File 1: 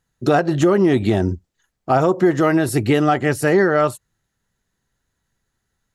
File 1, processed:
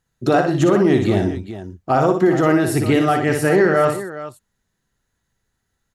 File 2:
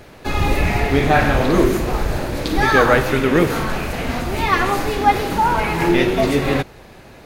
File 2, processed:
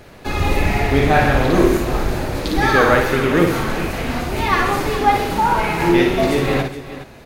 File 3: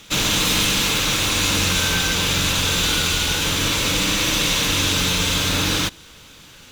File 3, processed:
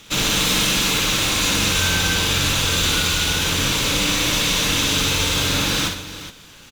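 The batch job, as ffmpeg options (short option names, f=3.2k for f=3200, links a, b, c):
-af "aecho=1:1:58|125|416:0.531|0.2|0.224,volume=-1dB"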